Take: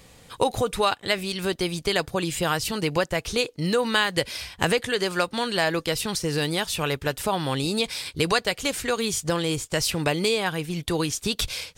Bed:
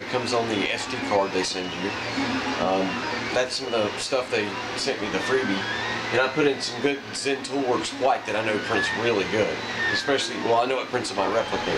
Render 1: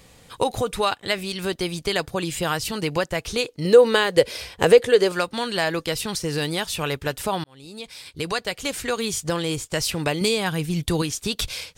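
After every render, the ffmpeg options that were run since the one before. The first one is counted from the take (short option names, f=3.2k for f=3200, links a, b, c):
-filter_complex "[0:a]asettb=1/sr,asplit=3[a][b][c];[a]atrim=end=3.654[d];[b]atrim=start=3.65:end=5.12,asetpts=PTS-STARTPTS,afade=t=in:d=0.004:c=qsin,afade=t=out:st=1.466:d=0.004:c=qsin,equalizer=f=470:w=2:g=12.5[e];[c]atrim=start=5.116[f];[d][e]acrossfade=d=0.004:c1=hsin:c2=qsin[g];[g][f]acrossfade=d=0.004:c1=qsin:c2=hsin,asettb=1/sr,asplit=3[h][i][j];[h]atrim=end=10.214[k];[i]atrim=start=10.21:end=11.02,asetpts=PTS-STARTPTS,afade=t=in:d=0.004:c=qsin,afade=t=out:st=0.806:d=0.004:c=qsin,bass=f=250:g=7,treble=f=4k:g=4[l];[j]atrim=start=11.016[m];[k][l]acrossfade=d=0.004:c1=hsin:c2=qsin[n];[n][m]acrossfade=d=0.004:c1=qsin:c2=hsin,asplit=2[o][p];[o]atrim=end=7.44,asetpts=PTS-STARTPTS,afade=t=out:st=7.436:d=0.004:c=hsin[q];[p]atrim=start=7.44,asetpts=PTS-STARTPTS,afade=t=in:d=1.41[r];[q][r]concat=n=2:v=0:a=1"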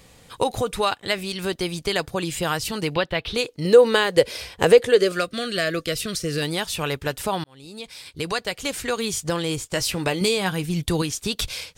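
-filter_complex "[0:a]asettb=1/sr,asplit=3[a][b][c];[a]atrim=end=2.944[d];[b]atrim=start=2.94:end=3.35,asetpts=PTS-STARTPTS,afade=t=in:d=0.004:c=qsin,afade=t=out:st=0.406:d=0.004:c=qsin,highshelf=f=5k:t=q:w=3:g=-11.5[e];[c]atrim=start=3.346[f];[d][e]acrossfade=d=0.004:c1=hsin:c2=qsin[g];[g][f]acrossfade=d=0.004:c1=qsin:c2=hsin,asettb=1/sr,asplit=3[h][i][j];[h]atrim=end=4.974[k];[i]atrim=start=4.97:end=6.42,asetpts=PTS-STARTPTS,afade=t=in:d=0.004:c=qsin,afade=t=out:st=1.446:d=0.004:c=qsin,asuperstop=centerf=890:order=8:qfactor=2.3[l];[j]atrim=start=6.416[m];[k][l]acrossfade=d=0.004:c1=hsin:c2=qsin[n];[n][m]acrossfade=d=0.004:c1=qsin:c2=hsin,asettb=1/sr,asplit=3[o][p][q];[o]atrim=end=9.724[r];[p]atrim=start=9.72:end=10.64,asetpts=PTS-STARTPTS,afade=t=in:d=0.004:c=qsin,afade=t=out:st=0.916:d=0.004:c=qsin,asplit=2[s][t];[t]adelay=16,volume=-11dB[u];[s][u]amix=inputs=2:normalize=0,atrim=end_sample=40572[v];[q]atrim=start=10.636[w];[r][v]acrossfade=d=0.004:c1=hsin:c2=qsin[x];[x][w]acrossfade=d=0.004:c1=qsin:c2=hsin"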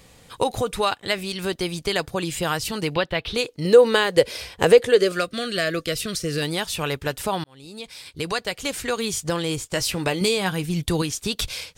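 -af anull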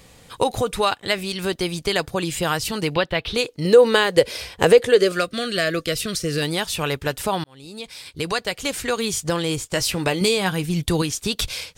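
-af "volume=2dB,alimiter=limit=-3dB:level=0:latency=1"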